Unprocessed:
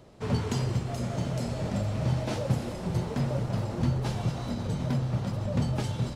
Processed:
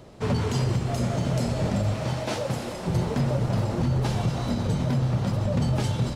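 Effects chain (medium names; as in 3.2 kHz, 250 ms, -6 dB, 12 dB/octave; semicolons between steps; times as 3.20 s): 1.94–2.88 s: bass shelf 280 Hz -10 dB; peak limiter -22 dBFS, peak gain reduction 7 dB; trim +6 dB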